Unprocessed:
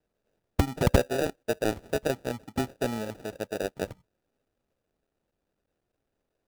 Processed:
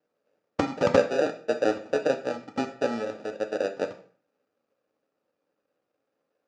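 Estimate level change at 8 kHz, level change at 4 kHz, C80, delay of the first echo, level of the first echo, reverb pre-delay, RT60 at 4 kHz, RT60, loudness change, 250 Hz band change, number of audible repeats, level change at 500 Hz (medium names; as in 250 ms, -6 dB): -5.5 dB, -1.0 dB, 16.0 dB, no echo, no echo, 3 ms, 0.40 s, 0.45 s, +2.5 dB, +0.5 dB, no echo, +4.5 dB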